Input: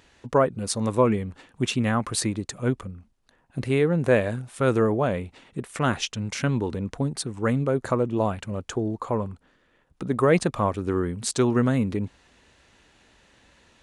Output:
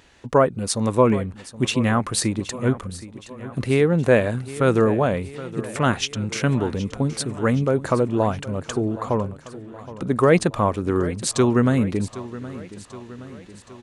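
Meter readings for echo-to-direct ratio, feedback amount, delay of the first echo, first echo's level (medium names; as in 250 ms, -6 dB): -14.5 dB, 57%, 770 ms, -16.0 dB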